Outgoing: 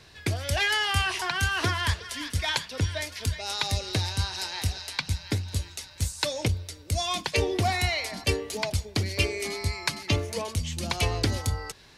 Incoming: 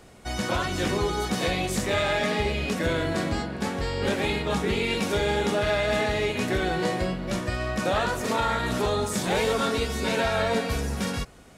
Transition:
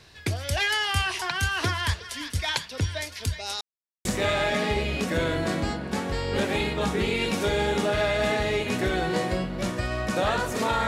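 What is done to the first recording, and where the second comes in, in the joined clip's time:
outgoing
3.61–4.05 s: mute
4.05 s: go over to incoming from 1.74 s

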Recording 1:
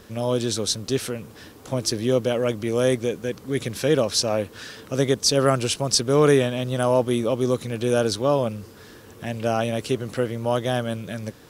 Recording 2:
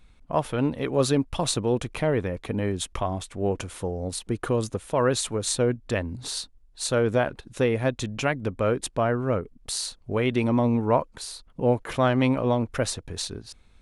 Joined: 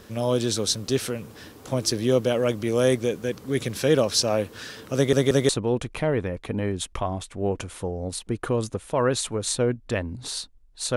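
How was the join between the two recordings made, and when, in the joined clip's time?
recording 1
4.95 s: stutter in place 0.18 s, 3 plays
5.49 s: go over to recording 2 from 1.49 s

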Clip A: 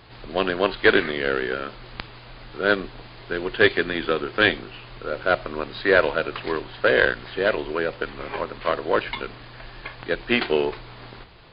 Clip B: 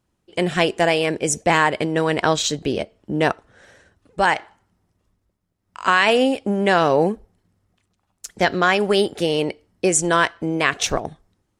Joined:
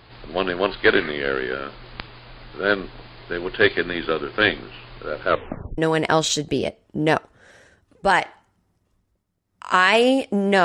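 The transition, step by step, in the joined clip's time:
clip A
5.28 s: tape stop 0.50 s
5.78 s: go over to clip B from 1.92 s

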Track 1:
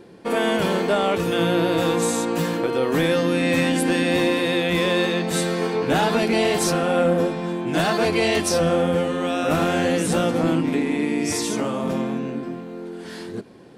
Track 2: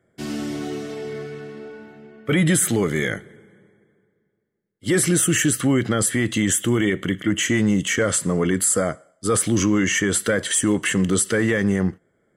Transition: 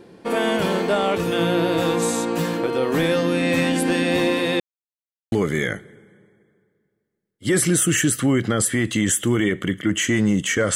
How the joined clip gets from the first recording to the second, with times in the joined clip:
track 1
4.60–5.32 s: mute
5.32 s: go over to track 2 from 2.73 s

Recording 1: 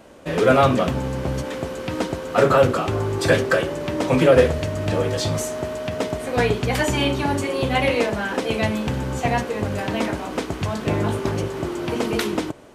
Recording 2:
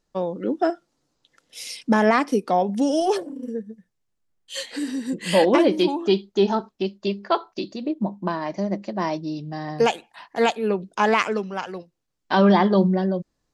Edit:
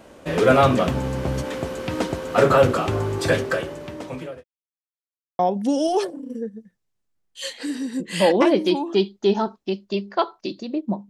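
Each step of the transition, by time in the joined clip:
recording 1
2.90–4.44 s: fade out linear
4.44–5.39 s: mute
5.39 s: go over to recording 2 from 2.52 s

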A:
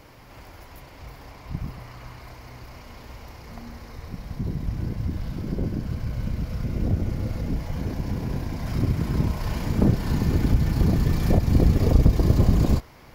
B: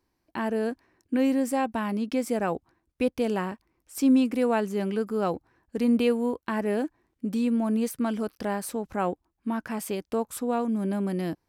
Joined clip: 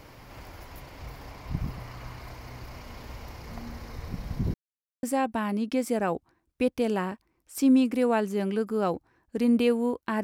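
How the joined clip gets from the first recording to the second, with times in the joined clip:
A
4.54–5.03 s: mute
5.03 s: go over to B from 1.43 s

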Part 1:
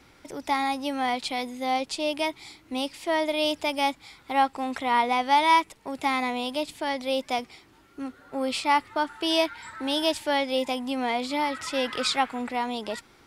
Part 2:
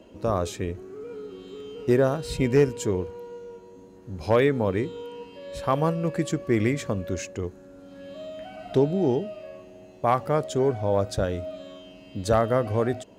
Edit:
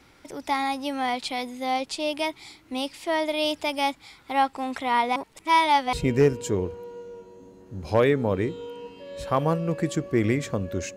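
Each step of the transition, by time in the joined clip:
part 1
5.16–5.93 s: reverse
5.93 s: go over to part 2 from 2.29 s

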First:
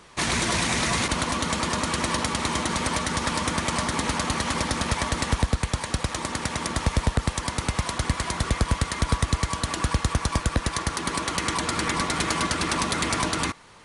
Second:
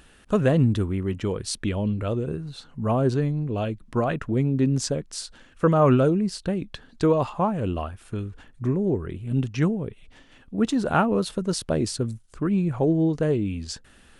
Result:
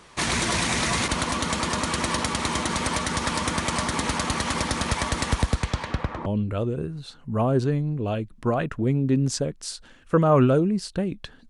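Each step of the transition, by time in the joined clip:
first
5.59–6.26 s: low-pass 8.4 kHz -> 1 kHz
6.26 s: go over to second from 1.76 s

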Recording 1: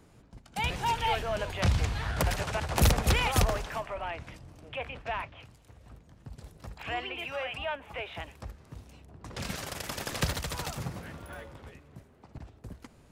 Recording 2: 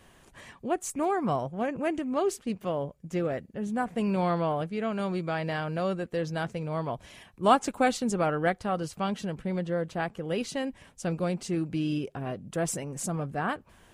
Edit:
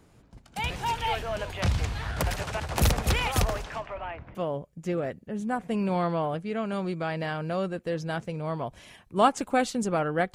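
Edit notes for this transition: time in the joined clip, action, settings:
recording 1
3.64–4.35 s: low-pass 10 kHz -> 1.2 kHz
4.35 s: go over to recording 2 from 2.62 s

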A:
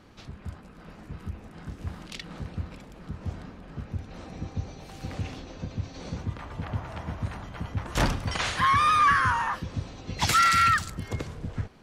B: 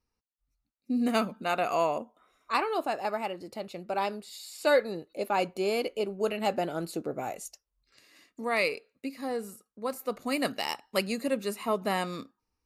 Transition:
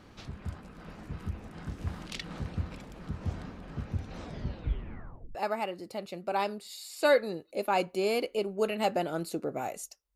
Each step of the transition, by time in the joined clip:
A
4.19 s: tape stop 1.16 s
5.35 s: go over to B from 2.97 s

